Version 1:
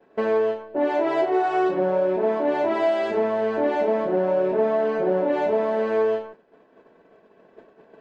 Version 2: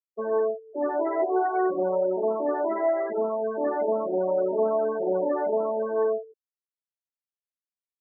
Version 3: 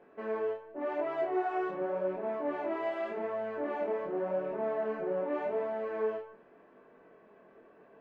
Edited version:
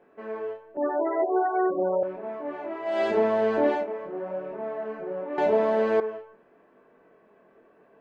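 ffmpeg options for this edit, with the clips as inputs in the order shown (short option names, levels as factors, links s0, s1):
-filter_complex "[0:a]asplit=2[s0][s1];[2:a]asplit=4[s2][s3][s4][s5];[s2]atrim=end=0.772[s6];[1:a]atrim=start=0.768:end=2.032[s7];[s3]atrim=start=2.028:end=3.01[s8];[s0]atrim=start=2.85:end=3.86[s9];[s4]atrim=start=3.7:end=5.382[s10];[s1]atrim=start=5.378:end=6.002[s11];[s5]atrim=start=5.998[s12];[s6][s7]acrossfade=d=0.004:c1=hsin:c2=hsin[s13];[s13][s8]acrossfade=d=0.004:c1=hsin:c2=hsin[s14];[s14][s9]acrossfade=d=0.16:c1=tri:c2=tri[s15];[s15][s10]acrossfade=d=0.16:c1=tri:c2=tri[s16];[s16][s11]acrossfade=d=0.004:c1=hsin:c2=hsin[s17];[s17][s12]acrossfade=d=0.004:c1=hsin:c2=hsin"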